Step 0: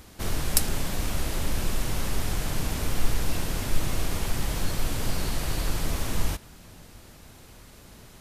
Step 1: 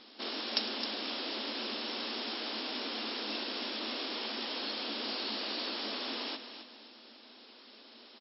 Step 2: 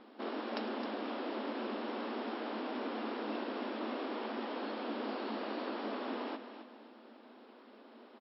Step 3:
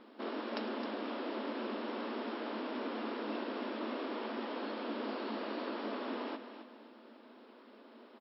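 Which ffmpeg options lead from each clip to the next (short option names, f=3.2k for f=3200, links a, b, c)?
-af "aecho=1:1:264|528|792:0.316|0.098|0.0304,aexciter=amount=2.6:drive=5.6:freq=2.9k,afftfilt=real='re*between(b*sr/4096,210,5500)':imag='im*between(b*sr/4096,210,5500)':win_size=4096:overlap=0.75,volume=-5dB"
-af "lowpass=1.3k,volume=3.5dB"
-af "bandreject=f=770:w=12"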